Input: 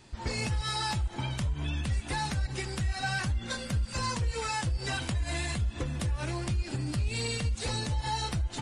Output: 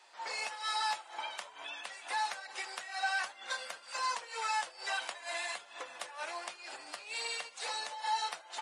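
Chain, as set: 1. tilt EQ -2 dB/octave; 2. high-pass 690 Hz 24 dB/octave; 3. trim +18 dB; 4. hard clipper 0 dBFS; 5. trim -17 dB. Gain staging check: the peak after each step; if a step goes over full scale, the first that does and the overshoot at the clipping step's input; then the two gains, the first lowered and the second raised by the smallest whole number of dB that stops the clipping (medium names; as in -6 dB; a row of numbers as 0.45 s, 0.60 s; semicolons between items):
-14.0 dBFS, -23.0 dBFS, -5.0 dBFS, -5.0 dBFS, -22.0 dBFS; nothing clips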